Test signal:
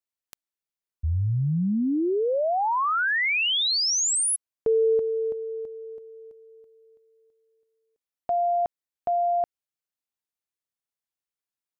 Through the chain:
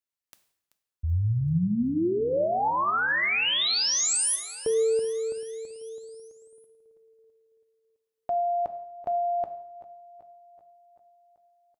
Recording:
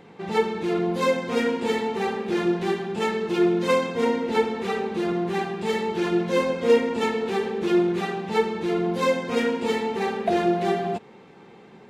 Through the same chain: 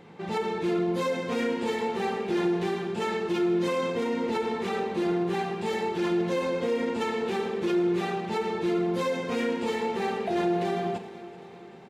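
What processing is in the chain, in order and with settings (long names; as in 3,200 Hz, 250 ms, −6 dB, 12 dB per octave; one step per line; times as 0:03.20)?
brickwall limiter −18.5 dBFS
repeating echo 384 ms, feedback 59%, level −16.5 dB
coupled-rooms reverb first 0.67 s, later 2.3 s, from −24 dB, DRR 8.5 dB
level −2 dB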